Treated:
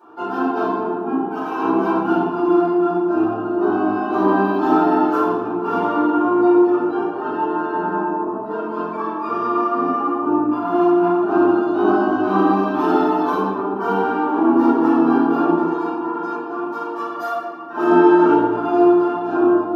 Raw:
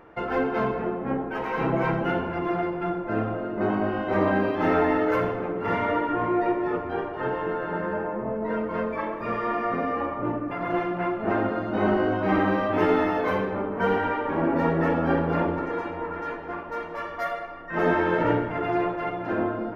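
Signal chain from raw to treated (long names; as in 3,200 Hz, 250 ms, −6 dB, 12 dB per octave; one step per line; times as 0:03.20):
high-pass filter 160 Hz 24 dB per octave
phaser with its sweep stopped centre 550 Hz, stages 6
rectangular room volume 150 cubic metres, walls mixed, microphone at 4.7 metres
level −5 dB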